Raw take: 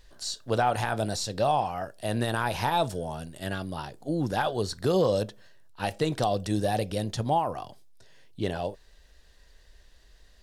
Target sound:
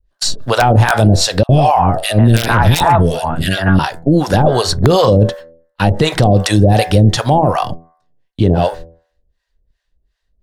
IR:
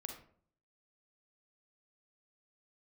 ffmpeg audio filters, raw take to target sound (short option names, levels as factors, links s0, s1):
-filter_complex "[0:a]adynamicequalizer=threshold=0.00891:dfrequency=210:dqfactor=1.2:tfrequency=210:tqfactor=1.2:attack=5:release=100:ratio=0.375:range=1.5:mode=cutabove:tftype=bell,agate=range=0.02:threshold=0.00562:ratio=16:detection=peak,bandreject=f=82.62:t=h:w=4,bandreject=f=165.24:t=h:w=4,bandreject=f=247.86:t=h:w=4,bandreject=f=330.48:t=h:w=4,bandreject=f=413.1:t=h:w=4,bandreject=f=495.72:t=h:w=4,bandreject=f=578.34:t=h:w=4,bandreject=f=660.96:t=h:w=4,bandreject=f=743.58:t=h:w=4,bandreject=f=826.2:t=h:w=4,bandreject=f=908.82:t=h:w=4,bandreject=f=991.44:t=h:w=4,bandreject=f=1074.06:t=h:w=4,bandreject=f=1156.68:t=h:w=4,bandreject=f=1239.3:t=h:w=4,bandreject=f=1321.92:t=h:w=4,bandreject=f=1404.54:t=h:w=4,bandreject=f=1487.16:t=h:w=4,bandreject=f=1569.78:t=h:w=4,bandreject=f=1652.4:t=h:w=4,bandreject=f=1735.02:t=h:w=4,bandreject=f=1817.64:t=h:w=4,bandreject=f=1900.26:t=h:w=4,bandreject=f=1982.88:t=h:w=4,bandreject=f=2065.5:t=h:w=4,bandreject=f=2148.12:t=h:w=4,acrossover=split=630[s0][s1];[s0]aeval=exprs='val(0)*(1-1/2+1/2*cos(2*PI*2.7*n/s))':c=same[s2];[s1]aeval=exprs='val(0)*(1-1/2-1/2*cos(2*PI*2.7*n/s))':c=same[s3];[s2][s3]amix=inputs=2:normalize=0,aeval=exprs='(mod(9.44*val(0)+1,2)-1)/9.44':c=same,bass=f=250:g=7,treble=f=4000:g=-5,asettb=1/sr,asplit=3[s4][s5][s6];[s4]atrim=end=1.434[s7];[s5]atrim=start=1.43:end=3.79,asetpts=PTS-STARTPTS,afade=t=in:d=0.004:c=qsin,afade=t=out:st=2.356:d=0.004:c=qsin,acrossover=split=570|1800[s8][s9][s10];[s8]adelay=60[s11];[s9]adelay=150[s12];[s11][s12][s10]amix=inputs=3:normalize=0,atrim=end_sample=104076[s13];[s6]atrim=start=3.786[s14];[s7][s13]acrossfade=d=0.004:c1=hsin:c2=qsin[s15];[s15][s14]acrossfade=d=0.004:c1=qsin:c2=hsin,alimiter=level_in=20:limit=0.891:release=50:level=0:latency=1,volume=0.891"